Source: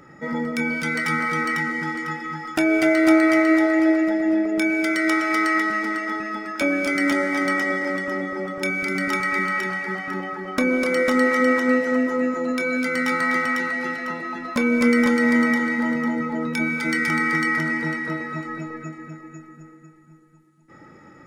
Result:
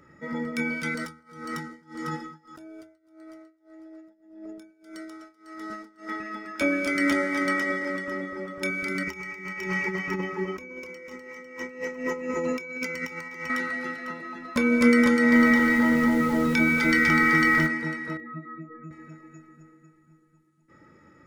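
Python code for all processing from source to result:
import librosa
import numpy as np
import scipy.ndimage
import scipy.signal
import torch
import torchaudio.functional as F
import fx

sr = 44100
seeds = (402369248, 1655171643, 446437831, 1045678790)

y = fx.chain(x, sr, fx.peak_eq(hz=2200.0, db=-14.0, octaves=0.75),
    fx.over_compress(threshold_db=-31.0, ratio=-1.0),
    fx.tremolo(hz=1.7, depth=0.95), at=(0.94, 6.09))
y = fx.chain(y, sr, fx.ripple_eq(per_octave=0.77, db=12),
    fx.over_compress(threshold_db=-26.0, ratio=-0.5),
    fx.notch(hz=1200.0, q=6.0), at=(9.03, 13.5))
y = fx.lowpass(y, sr, hz=6100.0, slope=12, at=(15.31, 17.66), fade=0.02)
y = fx.dmg_noise_colour(y, sr, seeds[0], colour='pink', level_db=-45.0, at=(15.31, 17.66), fade=0.02)
y = fx.env_flatten(y, sr, amount_pct=50, at=(15.31, 17.66), fade=0.02)
y = fx.chain(y, sr, fx.spec_expand(power=2.0),
    fx.doubler(ms=30.0, db=-4), at=(18.17, 18.91))
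y = fx.peak_eq(y, sr, hz=76.0, db=12.0, octaves=0.24)
y = fx.notch(y, sr, hz=780.0, q=5.0)
y = fx.upward_expand(y, sr, threshold_db=-30.0, expansion=1.5)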